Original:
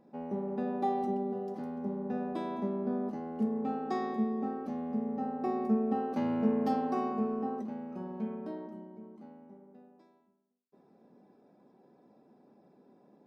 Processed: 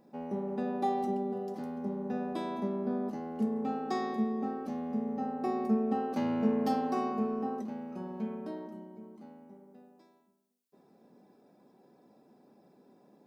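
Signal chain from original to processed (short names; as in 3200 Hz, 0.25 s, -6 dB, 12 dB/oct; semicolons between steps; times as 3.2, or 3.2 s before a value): high shelf 3500 Hz +9.5 dB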